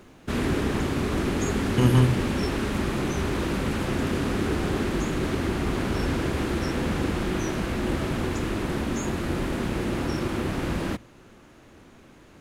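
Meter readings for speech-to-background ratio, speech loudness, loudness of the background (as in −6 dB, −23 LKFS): 4.0 dB, −23.0 LKFS, −27.0 LKFS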